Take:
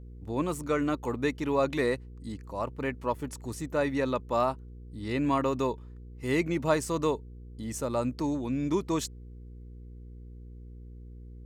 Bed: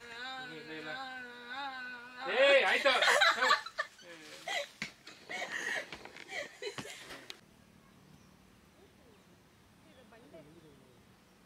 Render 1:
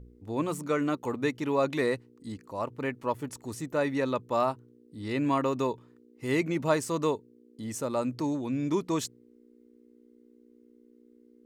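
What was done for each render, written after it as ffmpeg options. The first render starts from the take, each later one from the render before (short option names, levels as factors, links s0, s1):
-af "bandreject=f=60:t=h:w=4,bandreject=f=120:t=h:w=4,bandreject=f=180:t=h:w=4"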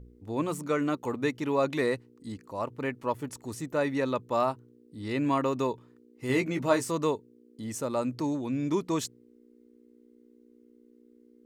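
-filter_complex "[0:a]asettb=1/sr,asplit=3[s0][s1][s2];[s0]atrim=end=6.284[s3];[s1]atrim=start=6.28:end=6.91,asetpts=PTS-STARTPTS,afade=t=in:d=0.004:c=qsin,afade=t=out:st=0.626:d=0.004:c=qsin,asplit=2[s4][s5];[s5]adelay=16,volume=0.501[s6];[s4][s6]amix=inputs=2:normalize=0,atrim=end_sample=27783[s7];[s2]atrim=start=6.906[s8];[s3][s7]acrossfade=d=0.004:c1=hsin:c2=qsin[s9];[s9][s8]acrossfade=d=0.004:c1=qsin:c2=hsin"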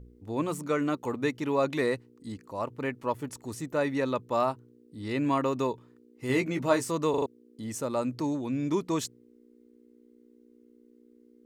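-filter_complex "[0:a]asplit=5[s0][s1][s2][s3][s4];[s0]atrim=end=7.142[s5];[s1]atrim=start=7.098:end=7.142[s6];[s2]atrim=start=7.098:end=7.142[s7];[s3]atrim=start=7.098:end=7.142[s8];[s4]atrim=start=7.258[s9];[s5][s6]acrossfade=d=0.004:c1=hsin:c2=hsin[s10];[s10][s7]acrossfade=d=0.004:c1=hsin:c2=hsin[s11];[s11][s8]acrossfade=d=0.004:c1=hsin:c2=hsin[s12];[s12][s9]acrossfade=d=0.004:c1=hsin:c2=hsin"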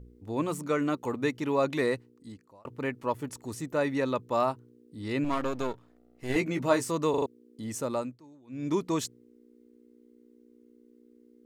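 -filter_complex "[0:a]asettb=1/sr,asplit=3[s0][s1][s2];[s0]atrim=end=5.244[s3];[s1]atrim=start=5.24:end=6.36,asetpts=PTS-STARTPTS,afade=t=in:d=0.004:c=qsin,afade=t=out:st=1.116:d=0.004:c=qsin,aeval=exprs='if(lt(val(0),0),0.251*val(0),val(0))':c=same[s4];[s2]atrim=start=6.356[s5];[s3][s4]acrossfade=d=0.004:c1=hsin:c2=qsin[s6];[s6][s5]acrossfade=d=0.004:c1=qsin:c2=hsin,asplit=4[s7][s8][s9][s10];[s7]atrim=end=2.65,asetpts=PTS-STARTPTS,afade=t=out:st=1.94:d=0.71[s11];[s8]atrim=start=2.65:end=8.18,asetpts=PTS-STARTPTS,afade=t=in:d=0.004:c=hsin,afade=t=out:st=5.28:d=0.25:silence=0.0668344[s12];[s9]atrim=start=8.18:end=8.47,asetpts=PTS-STARTPTS,volume=0.0668[s13];[s10]atrim=start=8.47,asetpts=PTS-STARTPTS,afade=t=in:d=0.25:silence=0.0668344[s14];[s11][s12][s13][s14]concat=n=4:v=0:a=1"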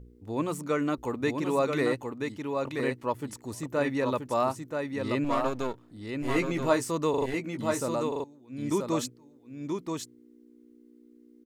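-af "aecho=1:1:980:0.596"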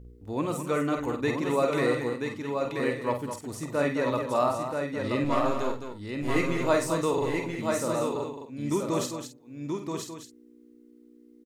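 -filter_complex "[0:a]asplit=2[s0][s1];[s1]adelay=48,volume=0.355[s2];[s0][s2]amix=inputs=2:normalize=0,aecho=1:1:49.56|212.8:0.398|0.398"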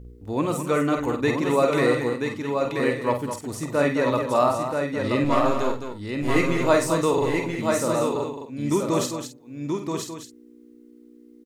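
-af "volume=1.78"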